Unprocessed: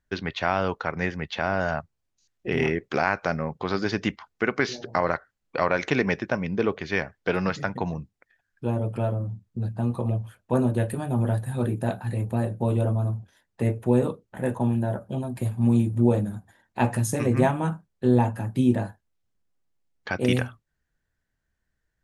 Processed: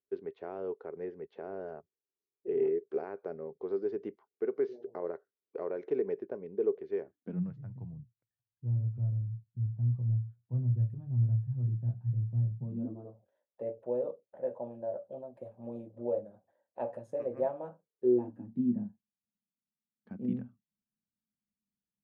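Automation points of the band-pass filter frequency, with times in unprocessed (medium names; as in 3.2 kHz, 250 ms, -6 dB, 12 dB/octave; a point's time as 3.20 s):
band-pass filter, Q 7.1
7.02 s 410 Hz
7.57 s 120 Hz
12.57 s 120 Hz
13.16 s 560 Hz
17.71 s 560 Hz
18.66 s 210 Hz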